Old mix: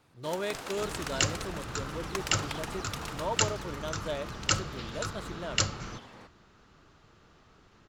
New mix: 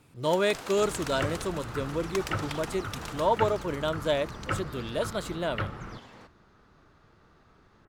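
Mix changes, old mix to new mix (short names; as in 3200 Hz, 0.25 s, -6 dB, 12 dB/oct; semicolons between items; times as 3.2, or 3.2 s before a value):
speech +8.5 dB; second sound: add LPF 2100 Hz 24 dB/oct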